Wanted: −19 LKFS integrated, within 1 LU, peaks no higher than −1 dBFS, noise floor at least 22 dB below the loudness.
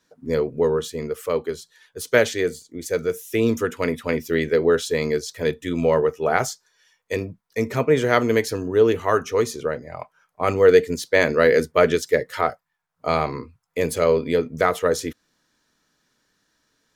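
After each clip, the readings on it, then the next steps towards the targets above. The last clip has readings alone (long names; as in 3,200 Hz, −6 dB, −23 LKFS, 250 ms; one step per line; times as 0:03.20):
integrated loudness −21.5 LKFS; sample peak −2.5 dBFS; target loudness −19.0 LKFS
→ level +2.5 dB
brickwall limiter −1 dBFS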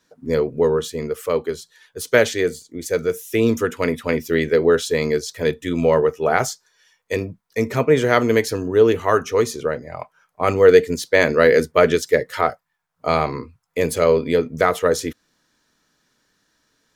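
integrated loudness −19.0 LKFS; sample peak −1.0 dBFS; background noise floor −70 dBFS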